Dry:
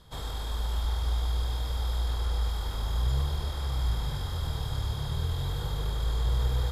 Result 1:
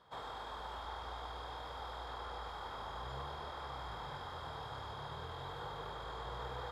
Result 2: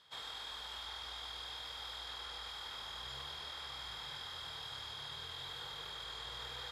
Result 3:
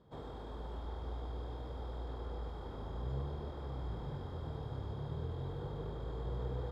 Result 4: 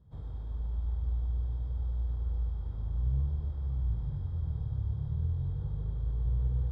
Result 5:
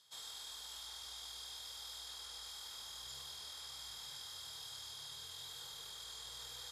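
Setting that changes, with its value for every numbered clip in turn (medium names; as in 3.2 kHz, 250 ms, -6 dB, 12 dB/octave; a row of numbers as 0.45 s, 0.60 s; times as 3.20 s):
band-pass filter, frequency: 980 Hz, 2.6 kHz, 330 Hz, 100 Hz, 6.8 kHz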